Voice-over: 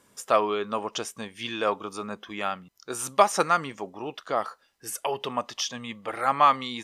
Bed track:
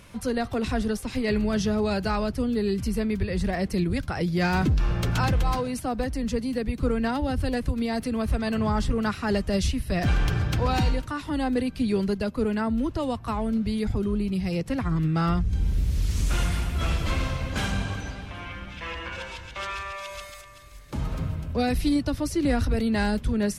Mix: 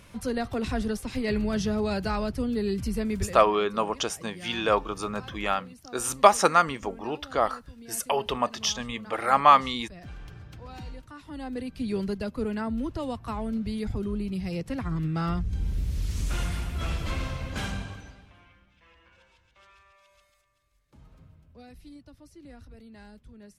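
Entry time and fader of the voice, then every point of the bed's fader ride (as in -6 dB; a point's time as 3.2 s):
3.05 s, +2.5 dB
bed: 3.23 s -2.5 dB
3.48 s -20 dB
10.61 s -20 dB
11.96 s -4.5 dB
17.68 s -4.5 dB
18.69 s -24.5 dB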